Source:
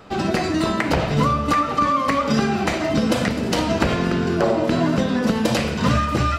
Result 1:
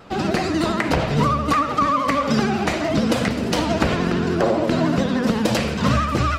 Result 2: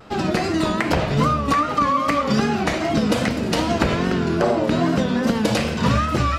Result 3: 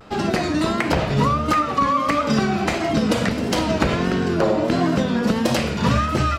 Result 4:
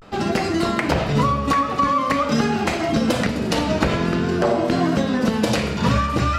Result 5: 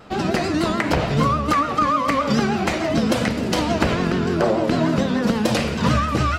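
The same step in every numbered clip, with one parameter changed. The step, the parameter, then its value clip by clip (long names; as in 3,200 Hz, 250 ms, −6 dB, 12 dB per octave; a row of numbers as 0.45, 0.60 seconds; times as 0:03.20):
pitch vibrato, speed: 13, 2.5, 1.5, 0.47, 6.8 Hertz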